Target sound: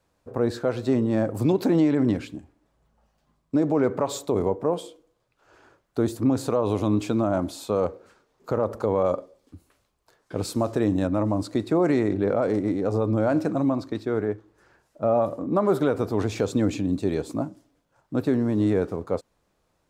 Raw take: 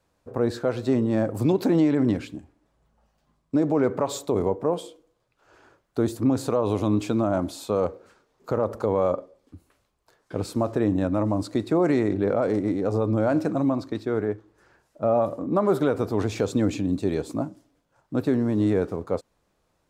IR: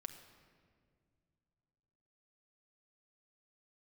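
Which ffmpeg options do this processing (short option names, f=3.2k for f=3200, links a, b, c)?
-filter_complex "[0:a]asettb=1/sr,asplit=3[a][b][c];[a]atrim=end=9.034[d];[b]atrim=start=9.03:end=11.07,asetpts=PTS-STARTPTS,afade=t=in:d=0.004:c=qsin,afade=t=out:st=2.036:d=0.004:c=qsin,adynamicequalizer=threshold=0.00562:dfrequency=3000:dqfactor=0.7:tfrequency=3000:tqfactor=0.7:attack=5:release=100:ratio=0.375:range=3:mode=boostabove:tftype=highshelf[e];[c]atrim=start=11.066[f];[d][e]acrossfade=d=0.004:c1=hsin:c2=qsin[g];[g][f]acrossfade=d=0.004:c1=qsin:c2=hsin"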